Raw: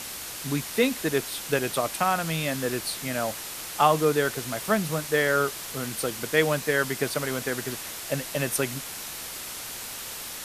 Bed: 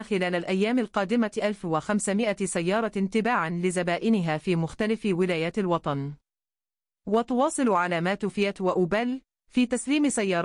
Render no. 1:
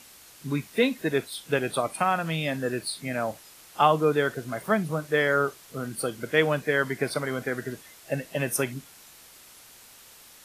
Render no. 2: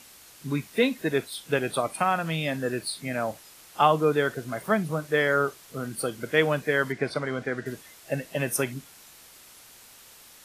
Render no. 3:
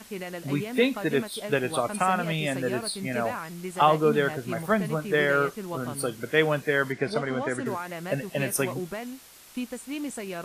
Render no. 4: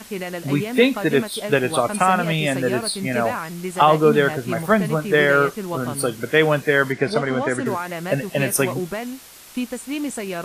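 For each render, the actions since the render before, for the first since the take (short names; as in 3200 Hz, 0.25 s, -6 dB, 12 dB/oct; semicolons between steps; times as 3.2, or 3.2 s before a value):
noise print and reduce 14 dB
6.92–7.66 air absorption 78 m
add bed -10 dB
gain +7 dB; limiter -3 dBFS, peak gain reduction 2.5 dB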